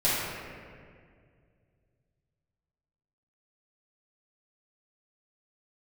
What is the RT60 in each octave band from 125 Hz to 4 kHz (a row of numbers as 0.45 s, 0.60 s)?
3.5 s, 2.6 s, 2.3 s, 1.8 s, 1.9 s, 1.3 s